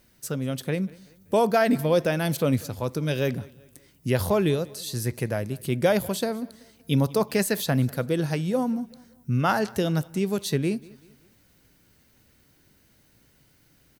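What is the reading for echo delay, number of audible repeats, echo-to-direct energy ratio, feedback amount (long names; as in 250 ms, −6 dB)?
191 ms, 2, −22.0 dB, 43%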